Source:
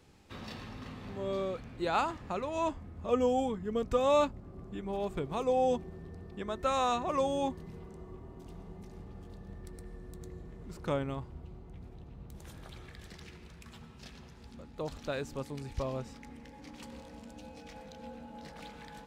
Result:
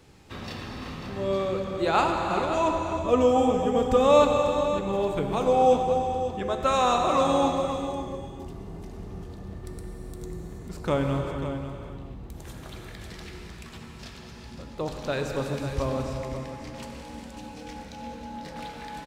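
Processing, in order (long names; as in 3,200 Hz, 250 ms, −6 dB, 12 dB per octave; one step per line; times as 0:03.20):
on a send: single-tap delay 543 ms −10 dB
on the sum: reverb whose tail is shaped and stops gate 460 ms flat, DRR 2.5 dB
level +6.5 dB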